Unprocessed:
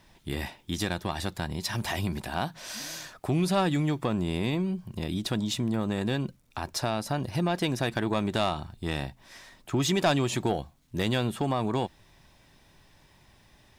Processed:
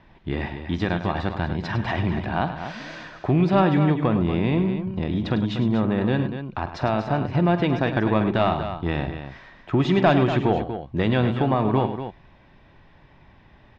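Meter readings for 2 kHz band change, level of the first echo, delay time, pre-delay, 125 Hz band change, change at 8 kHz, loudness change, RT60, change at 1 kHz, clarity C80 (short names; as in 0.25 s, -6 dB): +5.0 dB, -15.0 dB, 46 ms, none, +7.5 dB, under -15 dB, +6.5 dB, none, +7.0 dB, none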